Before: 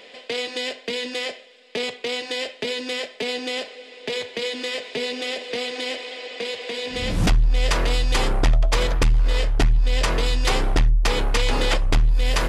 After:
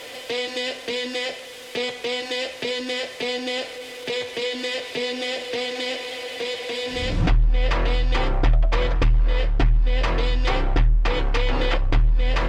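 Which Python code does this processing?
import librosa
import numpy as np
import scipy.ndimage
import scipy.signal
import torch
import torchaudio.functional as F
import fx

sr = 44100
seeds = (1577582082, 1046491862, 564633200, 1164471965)

y = x + 0.5 * 10.0 ** (-33.5 / 20.0) * np.sign(x)
y = fx.env_lowpass_down(y, sr, base_hz=2900.0, full_db=-14.5)
y = fx.notch_comb(y, sr, f0_hz=210.0)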